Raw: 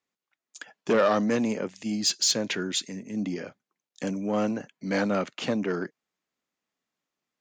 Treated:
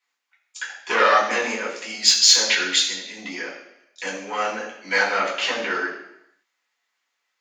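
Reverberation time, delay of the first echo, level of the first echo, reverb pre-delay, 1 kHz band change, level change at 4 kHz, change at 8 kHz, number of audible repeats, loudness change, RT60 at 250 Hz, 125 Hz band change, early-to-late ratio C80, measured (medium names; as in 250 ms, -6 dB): 0.80 s, no echo, no echo, 3 ms, +10.0 dB, +11.5 dB, +9.5 dB, no echo, +8.0 dB, 0.85 s, under -10 dB, 7.0 dB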